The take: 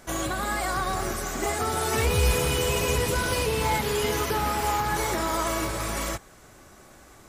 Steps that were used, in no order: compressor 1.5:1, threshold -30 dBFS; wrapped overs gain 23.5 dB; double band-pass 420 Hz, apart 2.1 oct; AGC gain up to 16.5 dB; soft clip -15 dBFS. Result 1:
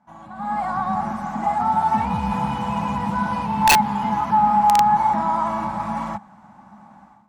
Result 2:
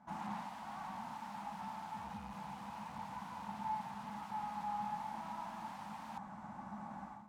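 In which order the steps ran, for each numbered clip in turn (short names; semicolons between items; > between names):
soft clip > double band-pass > wrapped overs > compressor > AGC; AGC > soft clip > wrapped overs > double band-pass > compressor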